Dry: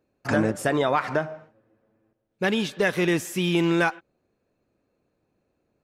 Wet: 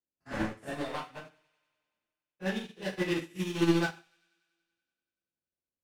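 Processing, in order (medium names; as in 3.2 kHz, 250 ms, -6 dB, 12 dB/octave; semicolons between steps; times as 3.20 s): spectrogram pixelated in time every 50 ms; transient shaper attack +2 dB, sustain -10 dB; wavefolder -18 dBFS; on a send: feedback echo behind a high-pass 95 ms, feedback 74%, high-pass 2 kHz, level -9 dB; on the sum: two-slope reverb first 0.59 s, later 2.4 s, from -28 dB, DRR -5.5 dB; upward expansion 2.5:1, over -30 dBFS; trim -7 dB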